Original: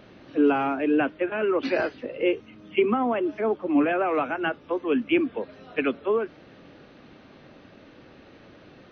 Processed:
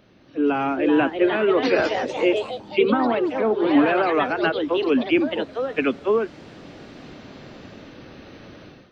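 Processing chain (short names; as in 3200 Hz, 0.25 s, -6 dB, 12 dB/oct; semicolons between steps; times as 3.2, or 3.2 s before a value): AGC gain up to 13.5 dB; tone controls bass +3 dB, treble +6 dB; echoes that change speed 0.463 s, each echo +3 st, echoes 3, each echo -6 dB; gain -7 dB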